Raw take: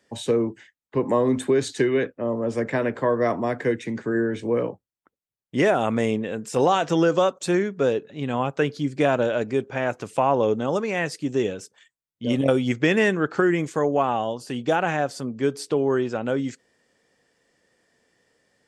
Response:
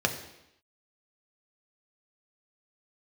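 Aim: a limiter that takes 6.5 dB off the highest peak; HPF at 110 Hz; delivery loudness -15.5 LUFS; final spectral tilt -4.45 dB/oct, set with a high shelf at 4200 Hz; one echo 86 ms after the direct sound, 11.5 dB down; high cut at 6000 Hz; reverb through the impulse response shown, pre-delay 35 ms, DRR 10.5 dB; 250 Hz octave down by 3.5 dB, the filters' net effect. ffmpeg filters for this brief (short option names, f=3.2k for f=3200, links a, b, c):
-filter_complex "[0:a]highpass=110,lowpass=6k,equalizer=f=250:t=o:g=-4.5,highshelf=f=4.2k:g=4.5,alimiter=limit=-13.5dB:level=0:latency=1,aecho=1:1:86:0.266,asplit=2[a][b];[1:a]atrim=start_sample=2205,adelay=35[c];[b][c]afir=irnorm=-1:irlink=0,volume=-21dB[d];[a][d]amix=inputs=2:normalize=0,volume=10dB"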